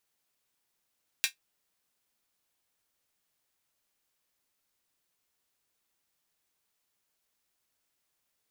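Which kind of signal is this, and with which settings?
closed hi-hat, high-pass 2200 Hz, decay 0.12 s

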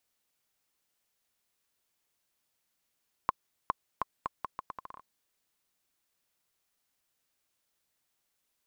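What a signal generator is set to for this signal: bouncing ball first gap 0.41 s, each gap 0.77, 1060 Hz, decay 22 ms -12 dBFS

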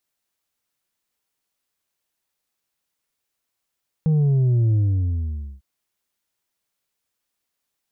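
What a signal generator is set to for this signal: sub drop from 160 Hz, over 1.55 s, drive 4 dB, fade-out 0.87 s, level -15.5 dB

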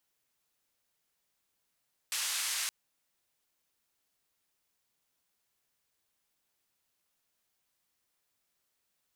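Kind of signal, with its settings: noise band 1400–9800 Hz, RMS -34 dBFS 0.57 s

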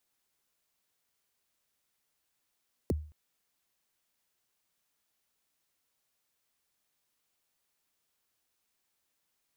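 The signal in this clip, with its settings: kick drum length 0.22 s, from 550 Hz, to 76 Hz, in 24 ms, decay 0.42 s, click on, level -23 dB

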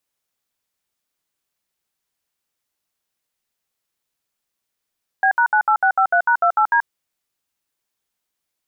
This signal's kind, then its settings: DTMF "B#98653#28D", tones 83 ms, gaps 66 ms, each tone -15 dBFS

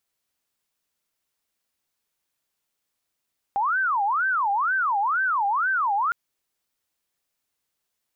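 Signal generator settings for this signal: siren wail 793–1560 Hz 2.1/s sine -20 dBFS 2.56 s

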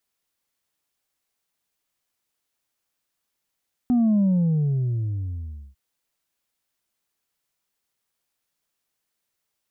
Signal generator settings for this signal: sub drop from 250 Hz, over 1.85 s, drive 2 dB, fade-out 1.55 s, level -16.5 dB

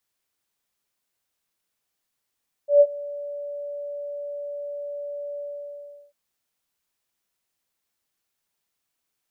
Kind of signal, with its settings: ADSR sine 577 Hz, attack 0.127 s, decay 52 ms, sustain -21.5 dB, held 2.71 s, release 0.736 s -8.5 dBFS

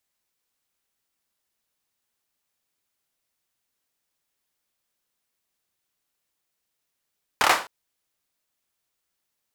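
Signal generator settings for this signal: hand clap length 0.26 s, apart 28 ms, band 1000 Hz, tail 0.33 s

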